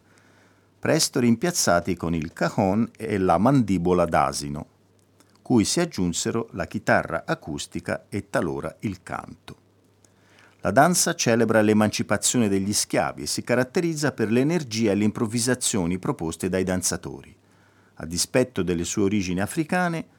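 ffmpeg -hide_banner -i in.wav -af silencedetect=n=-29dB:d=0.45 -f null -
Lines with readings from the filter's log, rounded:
silence_start: 0.00
silence_end: 0.85 | silence_duration: 0.85
silence_start: 4.62
silence_end: 5.50 | silence_duration: 0.88
silence_start: 9.52
silence_end: 10.65 | silence_duration: 1.12
silence_start: 17.24
silence_end: 18.00 | silence_duration: 0.77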